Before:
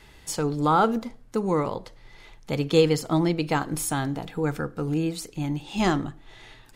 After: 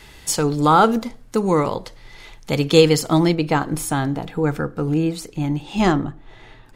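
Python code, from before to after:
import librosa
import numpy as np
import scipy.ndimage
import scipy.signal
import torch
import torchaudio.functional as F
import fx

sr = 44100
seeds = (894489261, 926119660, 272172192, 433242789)

y = fx.high_shelf(x, sr, hz=2600.0, db=fx.steps((0.0, 4.5), (3.34, -5.0), (5.91, -12.0)))
y = F.gain(torch.from_numpy(y), 6.0).numpy()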